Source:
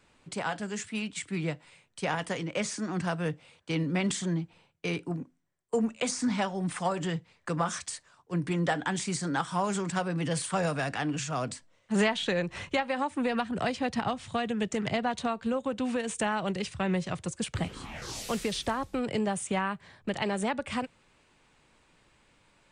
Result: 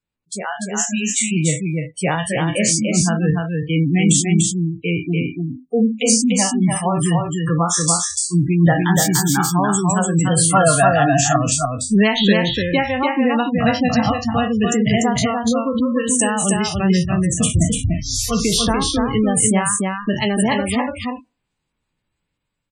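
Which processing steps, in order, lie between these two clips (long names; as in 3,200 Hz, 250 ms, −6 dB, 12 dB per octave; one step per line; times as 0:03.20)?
peak hold with a decay on every bin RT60 0.47 s
noise reduction from a noise print of the clip's start 27 dB
gate on every frequency bin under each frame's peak −20 dB strong
bass and treble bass +8 dB, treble +12 dB
automatic gain control gain up to 8 dB
0:10.32–0:11.36: hollow resonant body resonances 700/1,000/1,400 Hz, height 16 dB, ringing for 40 ms
on a send: single-tap delay 293 ms −3.5 dB
0:08.95–0:09.53: on the sum: linearly interpolated sample-rate reduction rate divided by 2×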